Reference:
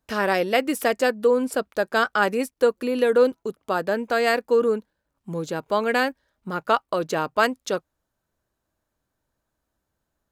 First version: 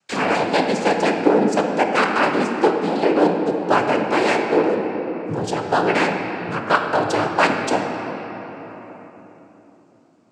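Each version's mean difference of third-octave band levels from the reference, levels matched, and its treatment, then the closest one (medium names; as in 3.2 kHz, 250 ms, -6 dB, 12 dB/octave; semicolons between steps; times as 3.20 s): 11.0 dB: gain riding 0.5 s; noise-vocoded speech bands 8; simulated room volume 210 m³, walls hard, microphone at 0.35 m; tape noise reduction on one side only encoder only; trim +3 dB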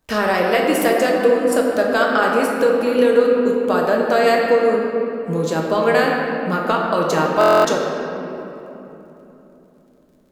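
7.5 dB: compression 3:1, threshold -24 dBFS, peak gain reduction 9 dB; crackle 38 per s -57 dBFS; simulated room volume 190 m³, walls hard, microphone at 0.54 m; buffer glitch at 7.39 s, samples 1024, times 10; trim +6.5 dB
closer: second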